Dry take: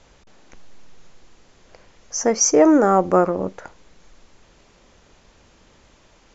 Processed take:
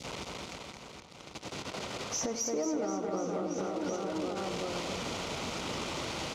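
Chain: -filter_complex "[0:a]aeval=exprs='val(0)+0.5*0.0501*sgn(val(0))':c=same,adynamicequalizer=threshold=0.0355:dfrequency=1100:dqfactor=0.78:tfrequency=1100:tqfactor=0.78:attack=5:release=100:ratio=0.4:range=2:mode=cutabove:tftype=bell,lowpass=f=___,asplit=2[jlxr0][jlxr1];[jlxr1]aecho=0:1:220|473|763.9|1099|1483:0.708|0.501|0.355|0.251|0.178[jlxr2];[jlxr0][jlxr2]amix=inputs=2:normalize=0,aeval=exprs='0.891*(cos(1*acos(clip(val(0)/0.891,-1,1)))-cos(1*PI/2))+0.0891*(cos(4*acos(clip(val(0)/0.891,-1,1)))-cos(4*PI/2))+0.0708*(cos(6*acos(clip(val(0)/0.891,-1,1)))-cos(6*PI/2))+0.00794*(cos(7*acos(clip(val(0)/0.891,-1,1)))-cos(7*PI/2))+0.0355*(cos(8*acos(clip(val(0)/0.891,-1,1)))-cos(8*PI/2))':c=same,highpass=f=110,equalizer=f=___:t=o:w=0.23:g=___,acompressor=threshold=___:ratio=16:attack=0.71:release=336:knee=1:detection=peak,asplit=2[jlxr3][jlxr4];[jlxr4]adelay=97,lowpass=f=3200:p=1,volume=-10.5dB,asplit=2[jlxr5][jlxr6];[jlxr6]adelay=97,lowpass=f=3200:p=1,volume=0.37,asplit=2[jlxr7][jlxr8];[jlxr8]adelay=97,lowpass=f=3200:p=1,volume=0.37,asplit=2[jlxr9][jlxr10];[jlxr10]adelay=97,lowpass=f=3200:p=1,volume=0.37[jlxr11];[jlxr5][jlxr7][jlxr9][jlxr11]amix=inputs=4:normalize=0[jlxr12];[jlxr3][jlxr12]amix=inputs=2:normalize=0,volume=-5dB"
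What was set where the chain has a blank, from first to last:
5600, 1700, -11.5, -22dB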